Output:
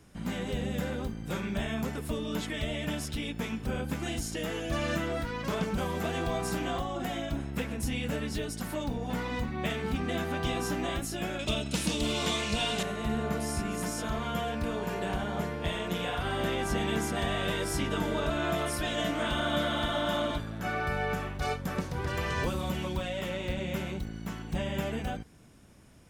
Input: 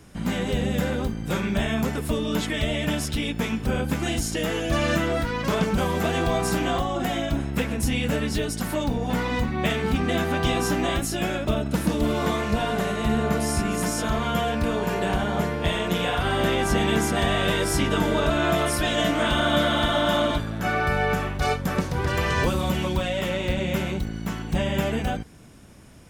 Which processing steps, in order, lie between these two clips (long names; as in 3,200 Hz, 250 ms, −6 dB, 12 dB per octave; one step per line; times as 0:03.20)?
0:11.39–0:12.83: flat-topped bell 4,700 Hz +12.5 dB 2.3 octaves
level −8 dB